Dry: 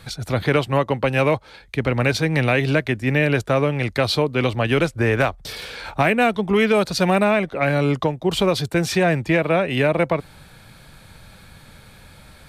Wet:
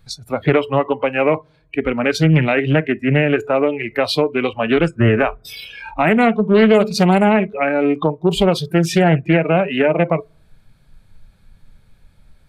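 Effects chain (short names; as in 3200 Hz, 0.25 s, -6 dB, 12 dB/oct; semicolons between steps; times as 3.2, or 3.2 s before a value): reverb RT60 0.70 s, pre-delay 4 ms, DRR 15 dB; in parallel at -1 dB: compressor, threshold -32 dBFS, peak gain reduction 19 dB; on the sum: low shelf 290 Hz +9.5 dB; spectral noise reduction 22 dB; Doppler distortion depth 0.32 ms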